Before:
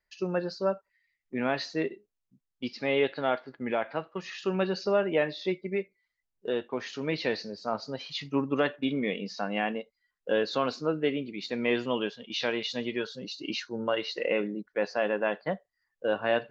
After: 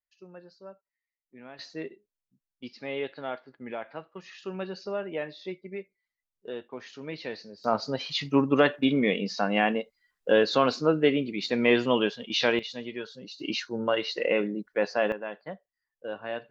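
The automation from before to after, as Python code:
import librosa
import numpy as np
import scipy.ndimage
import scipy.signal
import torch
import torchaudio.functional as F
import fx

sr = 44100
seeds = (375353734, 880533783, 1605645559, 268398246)

y = fx.gain(x, sr, db=fx.steps((0.0, -18.0), (1.59, -7.0), (7.64, 5.5), (12.59, -4.5), (13.4, 2.5), (15.12, -8.0)))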